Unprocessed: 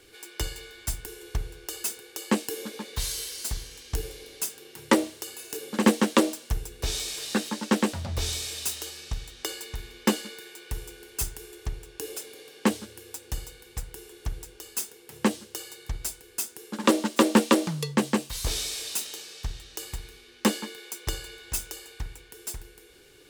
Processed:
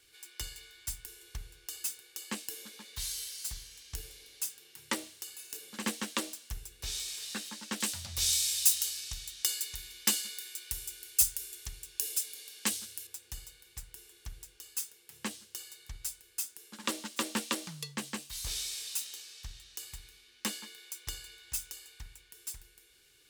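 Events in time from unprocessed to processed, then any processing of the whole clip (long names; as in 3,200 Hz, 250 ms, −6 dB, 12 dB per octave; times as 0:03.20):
0:07.80–0:13.07: high-shelf EQ 3,100 Hz +12 dB
whole clip: guitar amp tone stack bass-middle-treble 5-5-5; level +1 dB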